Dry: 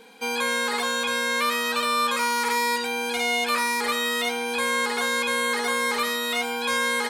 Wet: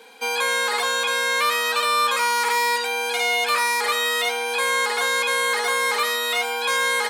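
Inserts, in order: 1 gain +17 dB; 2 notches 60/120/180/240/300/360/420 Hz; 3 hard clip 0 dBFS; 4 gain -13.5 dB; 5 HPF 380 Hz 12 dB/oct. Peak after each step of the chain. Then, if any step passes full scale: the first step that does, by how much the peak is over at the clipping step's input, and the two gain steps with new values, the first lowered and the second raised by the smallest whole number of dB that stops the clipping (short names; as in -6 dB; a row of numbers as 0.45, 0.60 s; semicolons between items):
+5.5, +5.0, 0.0, -13.5, -10.5 dBFS; step 1, 5.0 dB; step 1 +12 dB, step 4 -8.5 dB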